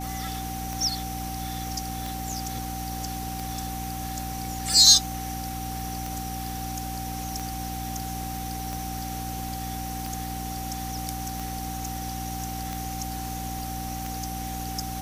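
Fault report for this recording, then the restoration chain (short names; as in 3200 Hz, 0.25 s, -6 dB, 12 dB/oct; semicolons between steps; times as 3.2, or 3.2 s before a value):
hum 60 Hz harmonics 5 -35 dBFS
tick 45 rpm
tone 770 Hz -35 dBFS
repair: de-click; de-hum 60 Hz, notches 5; notch 770 Hz, Q 30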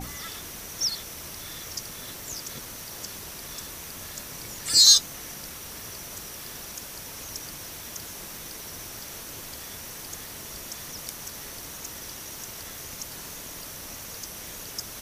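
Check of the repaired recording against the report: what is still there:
none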